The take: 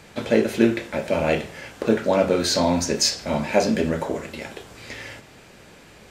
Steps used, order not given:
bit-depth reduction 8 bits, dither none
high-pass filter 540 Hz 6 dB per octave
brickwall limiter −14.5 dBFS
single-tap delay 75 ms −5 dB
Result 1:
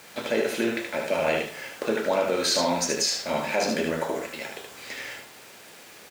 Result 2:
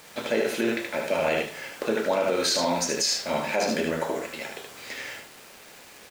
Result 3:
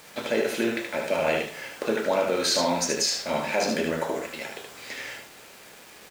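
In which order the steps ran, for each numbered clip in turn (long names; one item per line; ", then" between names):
bit-depth reduction, then high-pass filter, then brickwall limiter, then single-tap delay
high-pass filter, then bit-depth reduction, then single-tap delay, then brickwall limiter
high-pass filter, then brickwall limiter, then single-tap delay, then bit-depth reduction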